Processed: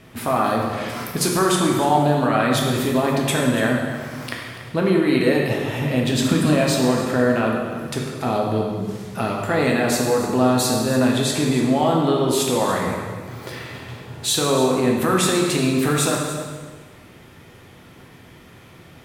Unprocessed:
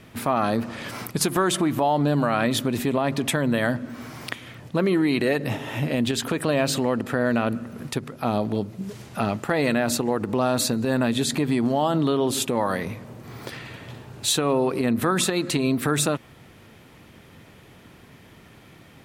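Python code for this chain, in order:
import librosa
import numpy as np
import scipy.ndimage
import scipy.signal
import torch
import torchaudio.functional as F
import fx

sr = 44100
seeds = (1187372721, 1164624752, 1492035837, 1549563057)

y = fx.low_shelf_res(x, sr, hz=330.0, db=6.5, q=3.0, at=(6.12, 6.53))
y = y + 10.0 ** (-14.0 / 20.0) * np.pad(y, (int(287 * sr / 1000.0), 0))[:len(y)]
y = fx.rev_plate(y, sr, seeds[0], rt60_s=1.5, hf_ratio=0.85, predelay_ms=0, drr_db=-1.5)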